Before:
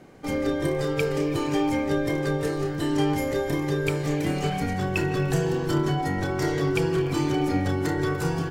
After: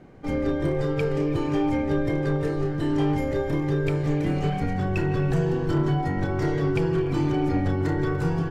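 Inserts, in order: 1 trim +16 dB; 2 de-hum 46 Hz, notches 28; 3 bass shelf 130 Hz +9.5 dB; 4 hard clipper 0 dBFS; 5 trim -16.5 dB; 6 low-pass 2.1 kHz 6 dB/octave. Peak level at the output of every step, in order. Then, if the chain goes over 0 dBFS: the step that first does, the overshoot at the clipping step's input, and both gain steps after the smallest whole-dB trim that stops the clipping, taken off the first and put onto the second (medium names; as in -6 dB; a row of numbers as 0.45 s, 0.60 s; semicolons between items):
+5.0 dBFS, +5.0 dBFS, +6.5 dBFS, 0.0 dBFS, -16.5 dBFS, -16.5 dBFS; step 1, 6.5 dB; step 1 +9 dB, step 5 -9.5 dB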